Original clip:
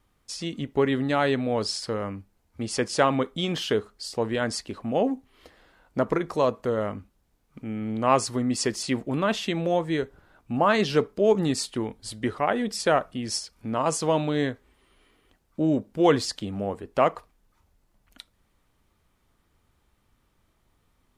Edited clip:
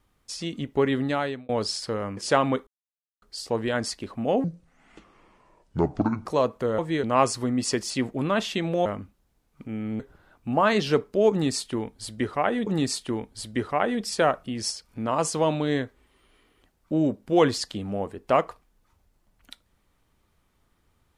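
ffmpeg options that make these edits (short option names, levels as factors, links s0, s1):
-filter_complex "[0:a]asplit=12[s0][s1][s2][s3][s4][s5][s6][s7][s8][s9][s10][s11];[s0]atrim=end=1.49,asetpts=PTS-STARTPTS,afade=t=out:st=1.05:d=0.44[s12];[s1]atrim=start=1.49:end=2.172,asetpts=PTS-STARTPTS,afade=t=in:d=0.004:c=hsin[s13];[s2]atrim=start=2.838:end=3.34,asetpts=PTS-STARTPTS,afade=t=out:st=0.498:d=0.004:c=hsin[s14];[s3]atrim=start=3.34:end=3.89,asetpts=PTS-STARTPTS,volume=0[s15];[s4]atrim=start=3.89:end=5.114,asetpts=PTS-STARTPTS,afade=t=in:d=0.004:c=hsin[s16];[s5]atrim=start=5.11:end=6.29,asetpts=PTS-STARTPTS,asetrate=28665,aresample=44100,atrim=end_sample=80058,asetpts=PTS-STARTPTS[s17];[s6]atrim=start=6.286:end=6.822[s18];[s7]atrim=start=9.778:end=10.032[s19];[s8]atrim=start=7.958:end=9.782[s20];[s9]atrim=start=6.818:end=7.962[s21];[s10]atrim=start=10.028:end=12.702[s22];[s11]atrim=start=11.338[s23];[s12][s13]concat=n=2:v=0:a=1[s24];[s14][s15][s16]concat=n=3:v=0:a=1[s25];[s24][s25]acrossfade=d=0.004:c1=hsin:c2=hsin[s26];[s26][s17]acrossfade=d=0.004:c1=hsin:c2=hsin[s27];[s27][s18]acrossfade=d=0.004:c1=hsin:c2=hsin[s28];[s28][s19]acrossfade=d=0.004:c1=hsin:c2=hsin[s29];[s29][s20]acrossfade=d=0.004:c1=hsin:c2=hsin[s30];[s30][s21]acrossfade=d=0.004:c1=hsin:c2=hsin[s31];[s31][s22]acrossfade=d=0.004:c1=hsin:c2=hsin[s32];[s32][s23]acrossfade=d=0.004:c1=hsin:c2=hsin"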